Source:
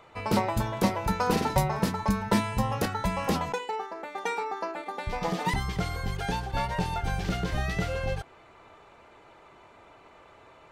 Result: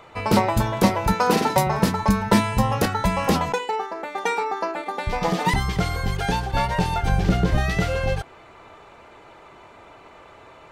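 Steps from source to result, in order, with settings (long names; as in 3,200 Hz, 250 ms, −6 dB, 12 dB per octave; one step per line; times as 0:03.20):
0:01.14–0:01.67: high-pass filter 180 Hz 12 dB per octave
0:07.09–0:07.58: tilt shelving filter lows +4 dB
level +7 dB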